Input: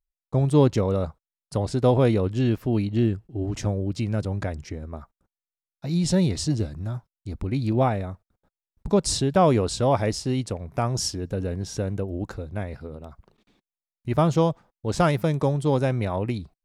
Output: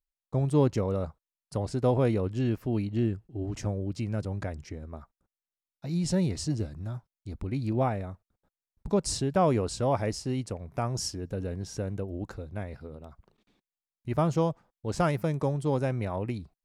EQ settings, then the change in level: dynamic EQ 3600 Hz, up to -6 dB, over -53 dBFS, Q 3.4; -5.5 dB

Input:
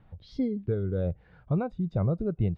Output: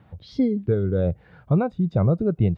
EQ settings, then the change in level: HPF 80 Hz; +7.5 dB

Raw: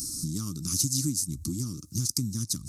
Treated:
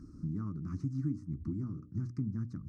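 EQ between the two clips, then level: tape spacing loss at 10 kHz 40 dB; resonant high shelf 2400 Hz -12.5 dB, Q 3; notches 60/120/180/240/300/360/420/480/540/600 Hz; -2.5 dB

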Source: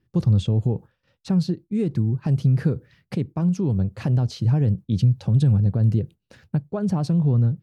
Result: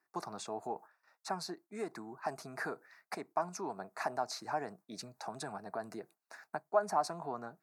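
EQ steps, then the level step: ladder high-pass 570 Hz, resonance 70%; fixed phaser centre 1300 Hz, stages 4; +14.0 dB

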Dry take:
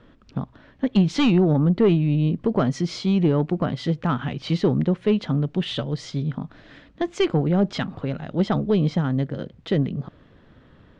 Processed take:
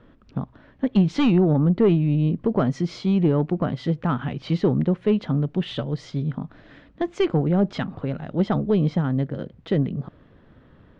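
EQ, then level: high shelf 3300 Hz -9.5 dB; 0.0 dB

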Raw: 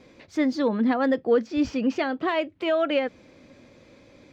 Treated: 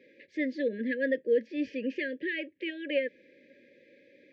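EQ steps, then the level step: BPF 330–2600 Hz; brick-wall FIR band-stop 600–1600 Hz; bell 1500 Hz +5.5 dB 1.6 oct; -4.5 dB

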